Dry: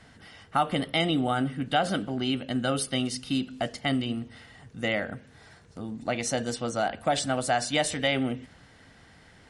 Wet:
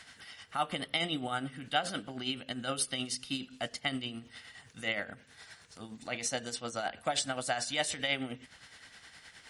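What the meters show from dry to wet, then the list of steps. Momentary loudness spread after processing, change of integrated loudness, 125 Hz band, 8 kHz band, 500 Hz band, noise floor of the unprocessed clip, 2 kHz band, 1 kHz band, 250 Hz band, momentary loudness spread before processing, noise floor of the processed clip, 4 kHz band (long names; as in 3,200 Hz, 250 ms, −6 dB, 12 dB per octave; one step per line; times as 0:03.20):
19 LU, −6.5 dB, −12.0 dB, −2.5 dB, −9.5 dB, −55 dBFS, −4.5 dB, −7.5 dB, −11.5 dB, 11 LU, −59 dBFS, −3.0 dB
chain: amplitude tremolo 9.6 Hz, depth 57%
tilt shelving filter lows −5 dB
one half of a high-frequency compander encoder only
level −4.5 dB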